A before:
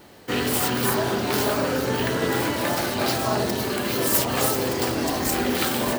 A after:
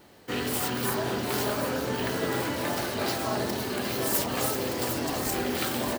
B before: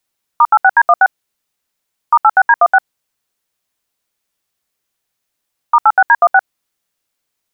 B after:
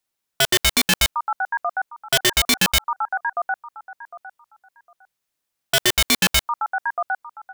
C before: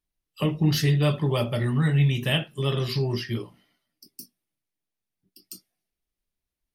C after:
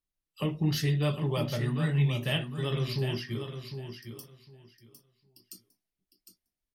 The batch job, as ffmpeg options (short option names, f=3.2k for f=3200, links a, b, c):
-filter_complex "[0:a]asplit=2[a][b];[b]aecho=0:1:756|1512|2268:0.376|0.0714|0.0136[c];[a][c]amix=inputs=2:normalize=0,aeval=exprs='(mod(1.68*val(0)+1,2)-1)/1.68':c=same,volume=-6dB"